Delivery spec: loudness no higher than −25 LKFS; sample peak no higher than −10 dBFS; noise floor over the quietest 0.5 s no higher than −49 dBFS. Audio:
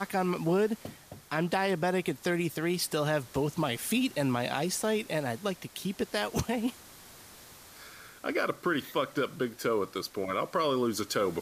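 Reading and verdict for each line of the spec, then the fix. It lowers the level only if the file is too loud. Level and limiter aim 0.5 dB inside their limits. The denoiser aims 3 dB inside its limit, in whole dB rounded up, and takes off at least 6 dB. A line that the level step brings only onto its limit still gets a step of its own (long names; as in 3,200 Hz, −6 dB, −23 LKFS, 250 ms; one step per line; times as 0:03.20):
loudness −31.0 LKFS: in spec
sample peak −14.5 dBFS: in spec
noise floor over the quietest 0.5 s −52 dBFS: in spec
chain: no processing needed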